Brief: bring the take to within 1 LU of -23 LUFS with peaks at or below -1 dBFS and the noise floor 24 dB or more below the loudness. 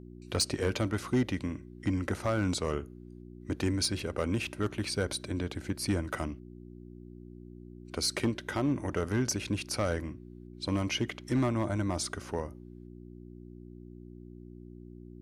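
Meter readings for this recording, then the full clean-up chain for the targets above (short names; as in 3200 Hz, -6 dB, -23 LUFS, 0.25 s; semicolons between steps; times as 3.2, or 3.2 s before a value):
clipped 0.4%; flat tops at -20.5 dBFS; hum 60 Hz; harmonics up to 360 Hz; hum level -47 dBFS; loudness -32.5 LUFS; peak -20.5 dBFS; loudness target -23.0 LUFS
-> clip repair -20.5 dBFS; de-hum 60 Hz, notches 6; gain +9.5 dB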